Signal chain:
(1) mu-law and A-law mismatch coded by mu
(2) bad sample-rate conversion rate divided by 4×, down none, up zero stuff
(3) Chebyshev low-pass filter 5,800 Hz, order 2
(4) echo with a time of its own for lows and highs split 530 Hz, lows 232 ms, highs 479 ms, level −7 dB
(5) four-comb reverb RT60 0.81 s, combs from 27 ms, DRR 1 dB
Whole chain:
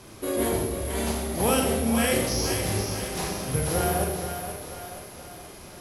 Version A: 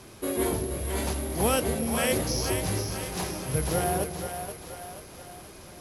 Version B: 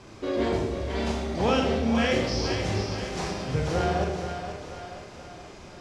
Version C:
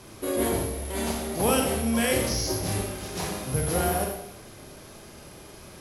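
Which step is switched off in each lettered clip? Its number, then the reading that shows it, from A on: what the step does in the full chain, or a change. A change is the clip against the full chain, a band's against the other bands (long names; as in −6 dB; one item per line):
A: 5, change in integrated loudness −2.0 LU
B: 2, 8 kHz band −13.0 dB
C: 4, echo-to-direct ratio 1.0 dB to −1.0 dB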